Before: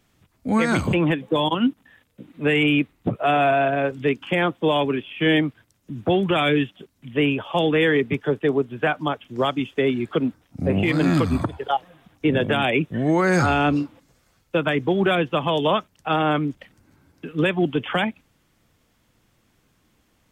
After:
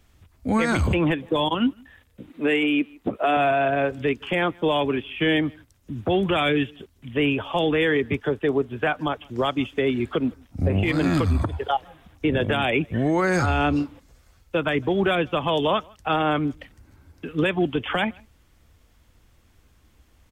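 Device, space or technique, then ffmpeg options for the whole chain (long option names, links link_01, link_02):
car stereo with a boomy subwoofer: -filter_complex "[0:a]asettb=1/sr,asplit=3[link_01][link_02][link_03];[link_01]atrim=end=2.304[link_04];[link_02]atrim=start=2.3:end=3.37,asetpts=PTS-STARTPTS,afade=type=in:duration=0.004:curve=qsin,afade=type=out:start_time=1.066:duration=0.004:curve=qsin,lowshelf=frequency=170:width_type=q:width=1.5:gain=-12.5[link_05];[link_03]atrim=start=3.366[link_06];[link_04][link_05]acrossfade=duration=0.004:curve1=hsin:curve2=qsin[link_07];[link_07][link_06]acrossfade=duration=0.004:curve1=qsin:curve2=hsin,lowshelf=frequency=100:width_type=q:width=1.5:gain=10,asplit=2[link_08][link_09];[link_09]adelay=157.4,volume=-30dB,highshelf=frequency=4000:gain=-3.54[link_10];[link_08][link_10]amix=inputs=2:normalize=0,alimiter=limit=-14.5dB:level=0:latency=1:release=117,volume=1.5dB"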